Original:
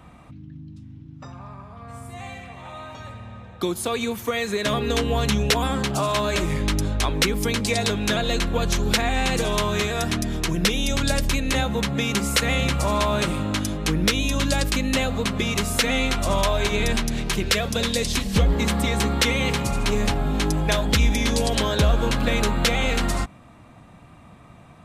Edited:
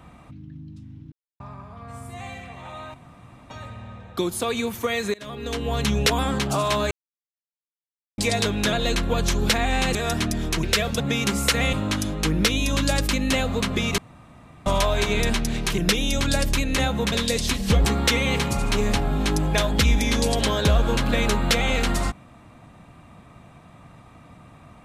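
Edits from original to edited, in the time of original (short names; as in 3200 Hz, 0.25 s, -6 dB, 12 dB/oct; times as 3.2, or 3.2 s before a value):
1.12–1.4 mute
2.94 insert room tone 0.56 s
4.58–5.43 fade in, from -23 dB
6.35–7.62 mute
9.39–9.86 cut
10.54–11.88 swap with 17.41–17.78
12.61–13.36 cut
15.61–16.29 room tone
18.51–18.99 cut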